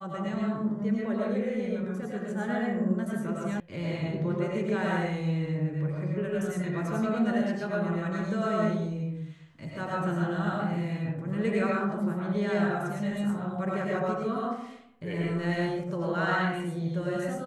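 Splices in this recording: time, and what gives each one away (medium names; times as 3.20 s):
3.60 s: sound stops dead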